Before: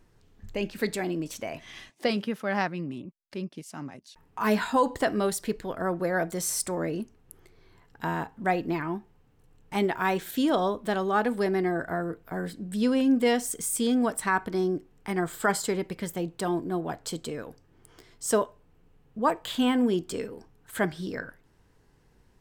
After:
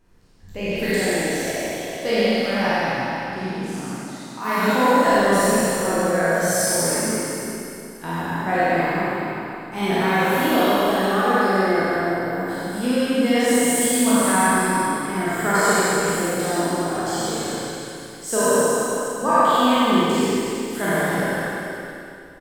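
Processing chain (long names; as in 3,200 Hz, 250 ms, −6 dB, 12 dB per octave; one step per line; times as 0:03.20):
peak hold with a decay on every bin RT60 2.24 s
0:03.92–0:05.06: high-pass filter 160 Hz 24 dB per octave
single-tap delay 416 ms −13 dB
four-comb reverb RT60 1.9 s, combs from 32 ms, DRR −6.5 dB
level −4 dB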